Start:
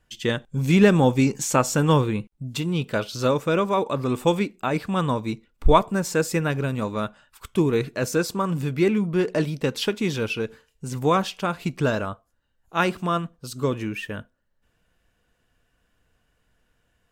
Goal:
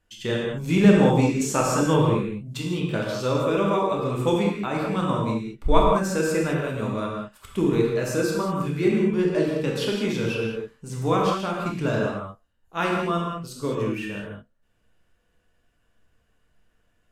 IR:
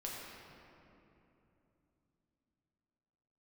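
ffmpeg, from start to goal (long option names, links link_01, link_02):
-filter_complex "[1:a]atrim=start_sample=2205,afade=type=out:start_time=0.18:duration=0.01,atrim=end_sample=8379,asetrate=26460,aresample=44100[link_01];[0:a][link_01]afir=irnorm=-1:irlink=0,volume=-2.5dB"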